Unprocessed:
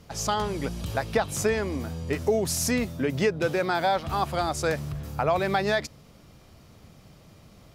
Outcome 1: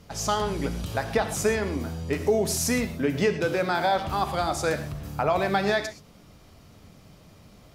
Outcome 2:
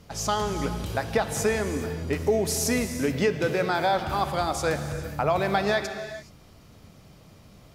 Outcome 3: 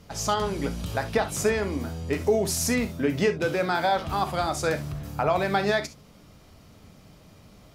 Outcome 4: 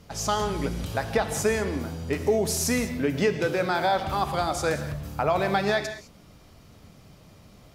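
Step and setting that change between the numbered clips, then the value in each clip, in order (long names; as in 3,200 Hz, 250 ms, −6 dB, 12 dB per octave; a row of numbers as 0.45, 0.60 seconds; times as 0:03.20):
reverb whose tail is shaped and stops, gate: 150, 450, 90, 230 milliseconds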